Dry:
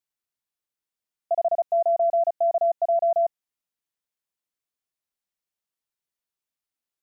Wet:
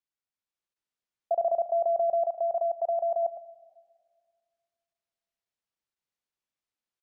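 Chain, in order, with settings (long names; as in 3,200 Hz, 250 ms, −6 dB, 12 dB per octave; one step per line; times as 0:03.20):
high-frequency loss of the air 60 metres
single-tap delay 109 ms −12 dB
output level in coarse steps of 12 dB
on a send at −18 dB: convolution reverb RT60 1.9 s, pre-delay 4 ms
on the sum: automatic gain control gain up to 5 dB
0:02.25–0:03.23: low-shelf EQ 440 Hz −7 dB
level −5 dB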